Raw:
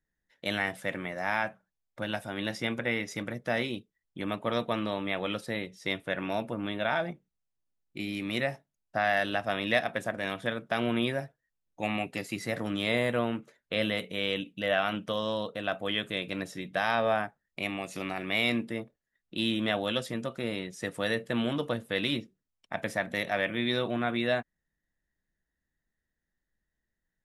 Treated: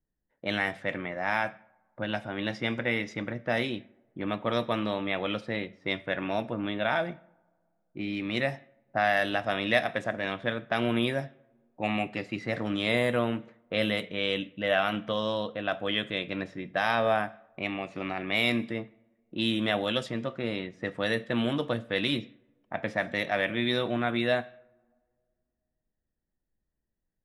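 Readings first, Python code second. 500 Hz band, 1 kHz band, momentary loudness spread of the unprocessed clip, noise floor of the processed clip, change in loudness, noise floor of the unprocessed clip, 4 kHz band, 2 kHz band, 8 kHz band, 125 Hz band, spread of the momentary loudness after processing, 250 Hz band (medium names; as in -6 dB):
+1.5 dB, +1.5 dB, 9 LU, -82 dBFS, +1.5 dB, -85 dBFS, +1.0 dB, +1.5 dB, no reading, +2.0 dB, 9 LU, +1.5 dB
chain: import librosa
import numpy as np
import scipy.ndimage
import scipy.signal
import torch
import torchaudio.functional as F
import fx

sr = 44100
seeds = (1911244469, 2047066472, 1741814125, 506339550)

y = fx.rev_double_slope(x, sr, seeds[0], early_s=0.58, late_s=2.3, knee_db=-21, drr_db=15.0)
y = fx.env_lowpass(y, sr, base_hz=830.0, full_db=-24.0)
y = F.gain(torch.from_numpy(y), 1.5).numpy()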